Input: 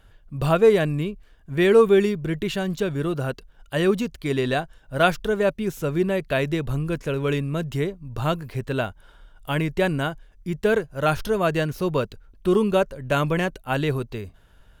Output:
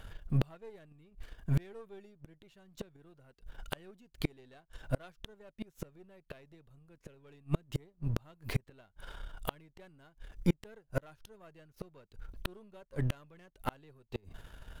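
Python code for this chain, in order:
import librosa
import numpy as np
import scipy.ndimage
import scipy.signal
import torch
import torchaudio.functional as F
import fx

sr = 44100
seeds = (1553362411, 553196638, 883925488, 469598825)

y = np.where(x < 0.0, 10.0 ** (-7.0 / 20.0) * x, x)
y = fx.gate_flip(y, sr, shuts_db=-23.0, range_db=-38)
y = y * 10.0 ** (6.5 / 20.0)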